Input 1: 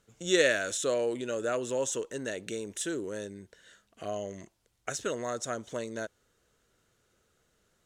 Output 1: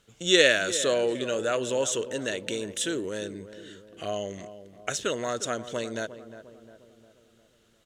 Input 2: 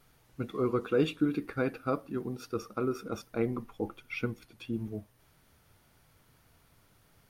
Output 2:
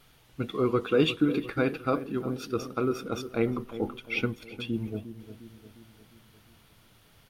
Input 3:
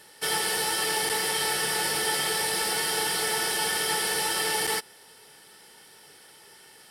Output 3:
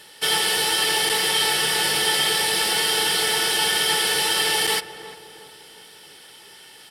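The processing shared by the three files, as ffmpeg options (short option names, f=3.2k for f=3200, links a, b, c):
-filter_complex "[0:a]equalizer=f=3.2k:t=o:w=0.84:g=7.5,asplit=2[a][b];[b]adelay=354,lowpass=f=1.2k:p=1,volume=-12dB,asplit=2[c][d];[d]adelay=354,lowpass=f=1.2k:p=1,volume=0.54,asplit=2[e][f];[f]adelay=354,lowpass=f=1.2k:p=1,volume=0.54,asplit=2[g][h];[h]adelay=354,lowpass=f=1.2k:p=1,volume=0.54,asplit=2[i][j];[j]adelay=354,lowpass=f=1.2k:p=1,volume=0.54,asplit=2[k][l];[l]adelay=354,lowpass=f=1.2k:p=1,volume=0.54[m];[c][e][g][i][k][m]amix=inputs=6:normalize=0[n];[a][n]amix=inputs=2:normalize=0,volume=3.5dB"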